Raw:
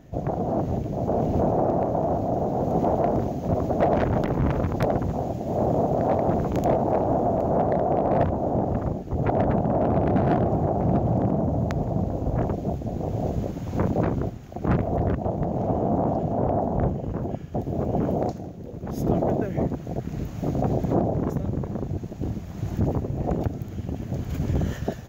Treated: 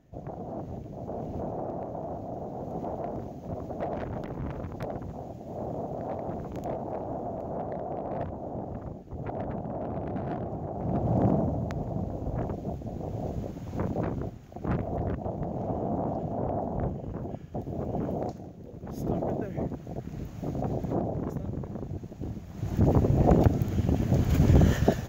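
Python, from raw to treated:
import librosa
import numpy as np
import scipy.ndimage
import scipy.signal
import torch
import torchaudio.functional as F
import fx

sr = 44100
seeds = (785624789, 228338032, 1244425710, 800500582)

y = fx.gain(x, sr, db=fx.line((10.7, -12.0), (11.28, 0.0), (11.6, -7.0), (22.49, -7.0), (23.03, 5.0)))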